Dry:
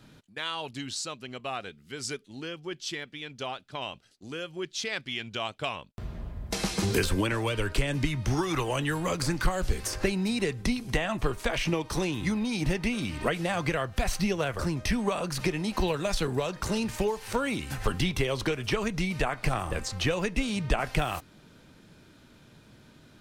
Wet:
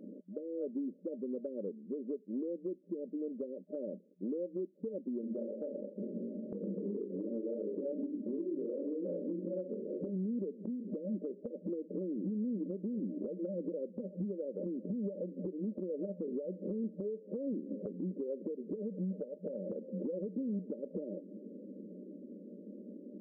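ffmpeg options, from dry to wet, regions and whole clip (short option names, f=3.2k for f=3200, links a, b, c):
-filter_complex "[0:a]asettb=1/sr,asplit=3[a][b][c];[a]atrim=end=5.214[d];[b]atrim=start=5.21:end=10.1,asetpts=PTS-STARTPTS,afade=t=in:d=0.004:c=qsin,afade=t=out:st=4.886:d=0.004:c=qsin,aecho=1:1:30|64.5|104.2|149.8|202.3:0.631|0.398|0.251|0.158|0.1,atrim=end_sample=215649,flanger=delay=17.5:depth=5.6:speed=2.8[e];[c]atrim=start=10.096[f];[d][e]acrossfade=d=0.004:c1=hsin:c2=qsin[g];[g][f]acrossfade=d=0.004:c1=qsin:c2=hsin,asettb=1/sr,asplit=3[h][i][j];[h]atrim=end=18.824[k];[i]atrim=start=18.82:end=19.7,asetpts=PTS-STARTPTS,afade=t=in:d=0.004:c=qsin,afade=t=out:st=0.876:d=0.004:c=qsin,highpass=f=61:w=0.5412,highpass=f=61:w=1.3066,aecho=1:1:1.6:0.67,atrim=end_sample=38808,aeval=exprs='sgn(val(0))*max(abs(val(0))-0.00501,0)':c=same[l];[j]atrim=start=19.696[m];[k][l]acrossfade=d=0.004:c1=hsin:c2=qsin[n];[n][m]acrossfade=d=0.004:c1=qsin:c2=hsin,afftfilt=real='re*between(b*sr/4096,180,610)':imag='im*between(b*sr/4096,180,610)':win_size=4096:overlap=0.75,acompressor=threshold=-44dB:ratio=6,alimiter=level_in=15.5dB:limit=-24dB:level=0:latency=1:release=131,volume=-15.5dB,volume=10dB"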